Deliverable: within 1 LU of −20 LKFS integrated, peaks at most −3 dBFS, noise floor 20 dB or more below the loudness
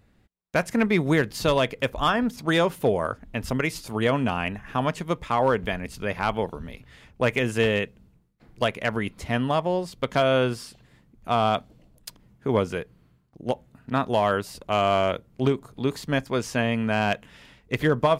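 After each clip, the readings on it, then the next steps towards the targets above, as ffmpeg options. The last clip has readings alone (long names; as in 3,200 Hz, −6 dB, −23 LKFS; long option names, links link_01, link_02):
integrated loudness −25.5 LKFS; sample peak −9.5 dBFS; target loudness −20.0 LKFS
→ -af "volume=5.5dB"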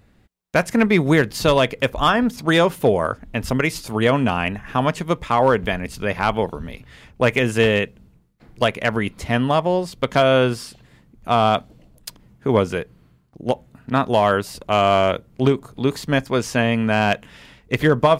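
integrated loudness −20.0 LKFS; sample peak −4.0 dBFS; background noise floor −54 dBFS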